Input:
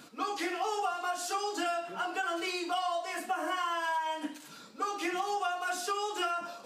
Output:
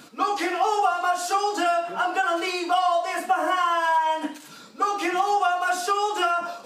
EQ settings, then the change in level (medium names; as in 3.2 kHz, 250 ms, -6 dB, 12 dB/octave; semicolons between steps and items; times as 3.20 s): dynamic bell 830 Hz, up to +6 dB, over -45 dBFS, Q 0.7; +5.5 dB